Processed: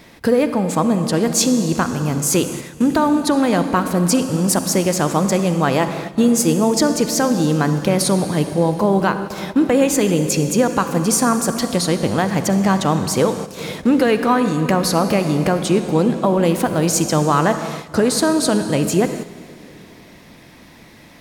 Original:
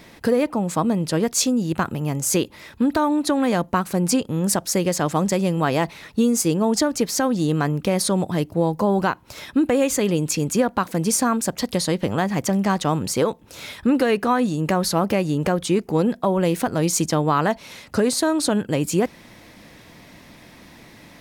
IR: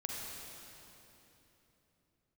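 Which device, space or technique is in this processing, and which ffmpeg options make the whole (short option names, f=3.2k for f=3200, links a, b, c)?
keyed gated reverb: -filter_complex "[0:a]asplit=3[a][b][c];[1:a]atrim=start_sample=2205[d];[b][d]afir=irnorm=-1:irlink=0[e];[c]apad=whole_len=935162[f];[e][f]sidechaingate=range=-10dB:threshold=-39dB:ratio=16:detection=peak,volume=-4dB[g];[a][g]amix=inputs=2:normalize=0"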